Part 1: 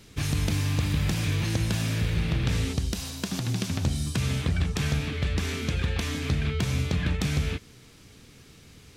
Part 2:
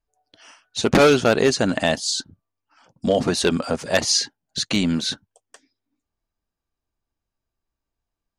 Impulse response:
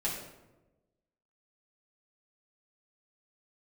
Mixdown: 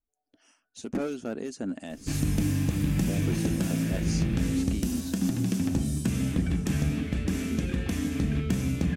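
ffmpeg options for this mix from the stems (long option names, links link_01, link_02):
-filter_complex "[0:a]adelay=1900,volume=-1dB,asplit=2[link_01][link_02];[link_02]volume=-9dB[link_03];[1:a]acompressor=threshold=-34dB:ratio=1.5,acrossover=split=2400[link_04][link_05];[link_04]aeval=exprs='val(0)*(1-0.5/2+0.5/2*cos(2*PI*3*n/s))':channel_layout=same[link_06];[link_05]aeval=exprs='val(0)*(1-0.5/2-0.5/2*cos(2*PI*3*n/s))':channel_layout=same[link_07];[link_06][link_07]amix=inputs=2:normalize=0,volume=-6.5dB[link_08];[2:a]atrim=start_sample=2205[link_09];[link_03][link_09]afir=irnorm=-1:irlink=0[link_10];[link_01][link_08][link_10]amix=inputs=3:normalize=0,equalizer=frequency=125:width_type=o:width=1:gain=-8,equalizer=frequency=250:width_type=o:width=1:gain=8,equalizer=frequency=500:width_type=o:width=1:gain=-3,equalizer=frequency=1000:width_type=o:width=1:gain=-7,equalizer=frequency=2000:width_type=o:width=1:gain=-4,equalizer=frequency=4000:width_type=o:width=1:gain=-11"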